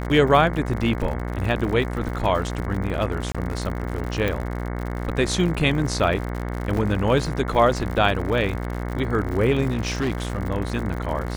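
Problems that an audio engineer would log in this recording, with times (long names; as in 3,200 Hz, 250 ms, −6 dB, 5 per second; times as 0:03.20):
mains buzz 60 Hz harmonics 37 −28 dBFS
surface crackle 95 per second −29 dBFS
0:03.32–0:03.35: drop-out 26 ms
0:04.28: click −12 dBFS
0:06.77: drop-out 2.2 ms
0:09.70–0:10.38: clipping −19 dBFS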